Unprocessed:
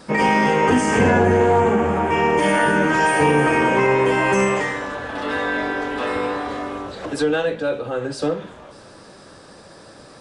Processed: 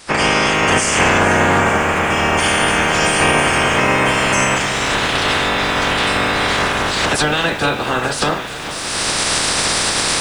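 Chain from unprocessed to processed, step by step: spectral limiter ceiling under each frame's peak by 23 dB; recorder AGC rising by 30 dB/s; lo-fi delay 0.441 s, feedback 80%, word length 6-bit, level -15 dB; gain +2 dB

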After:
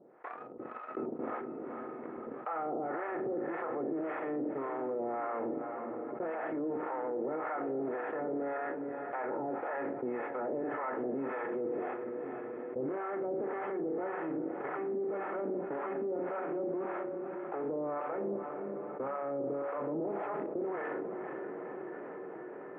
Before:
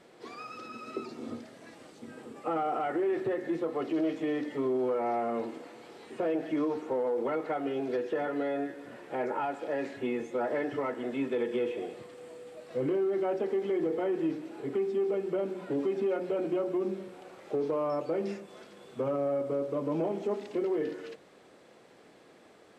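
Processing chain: per-bin compression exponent 0.6; inverse Chebyshev low-pass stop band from 4500 Hz, stop band 50 dB; gate -31 dBFS, range -52 dB; low shelf 160 Hz -12 dB; limiter -27.5 dBFS, peak gain reduction 9.5 dB; harmonic tremolo 1.8 Hz, depth 100%, crossover 660 Hz; diffused feedback echo 0.462 s, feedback 48%, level -14.5 dB; fast leveller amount 70%

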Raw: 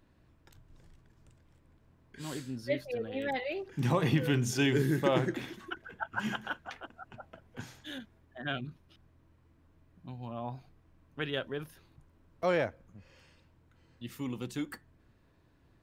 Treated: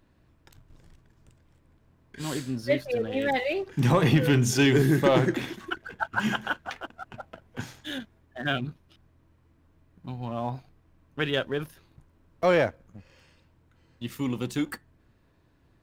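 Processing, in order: sample leveller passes 1; gain +4 dB

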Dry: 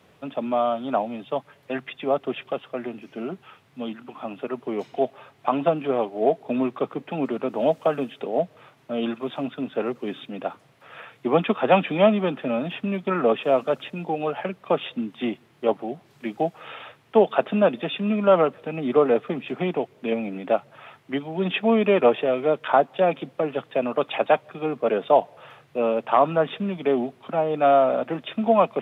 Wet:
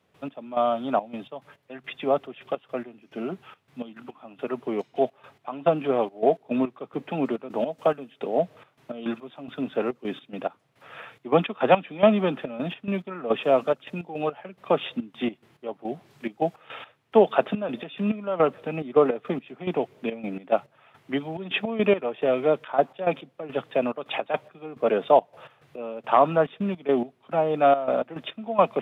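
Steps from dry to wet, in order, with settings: step gate ".x..xxx.x" 106 bpm -12 dB

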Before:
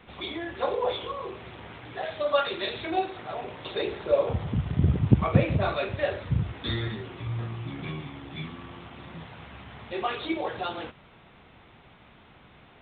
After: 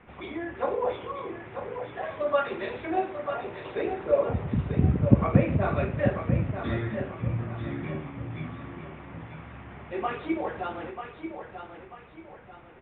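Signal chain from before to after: on a send: feedback echo 0.94 s, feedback 39%, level -8 dB; on the sum: dynamic EQ 250 Hz, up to +5 dB, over -42 dBFS, Q 1.8; LPF 2400 Hz 24 dB/oct; gain -1 dB

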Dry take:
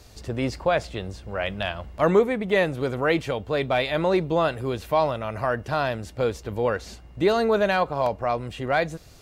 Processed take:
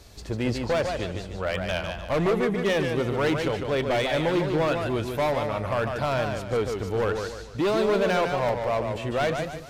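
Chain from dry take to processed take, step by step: overloaded stage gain 20.5 dB; varispeed -5%; warbling echo 0.148 s, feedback 40%, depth 120 cents, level -5.5 dB

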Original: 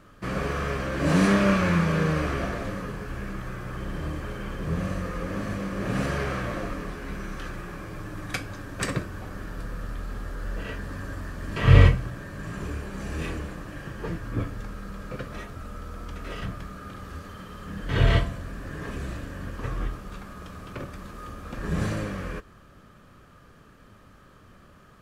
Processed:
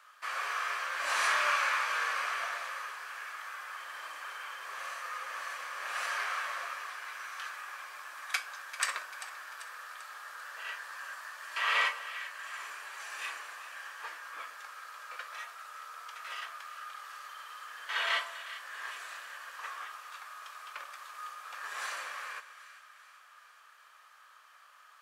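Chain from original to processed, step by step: HPF 920 Hz 24 dB/oct; on a send: split-band echo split 1300 Hz, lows 0.125 s, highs 0.392 s, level -13.5 dB

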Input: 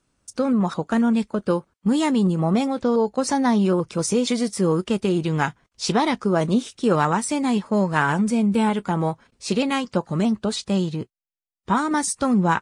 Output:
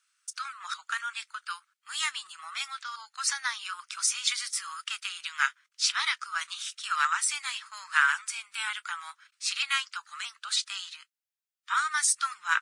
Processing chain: elliptic high-pass 1300 Hz, stop band 60 dB; gain +2 dB

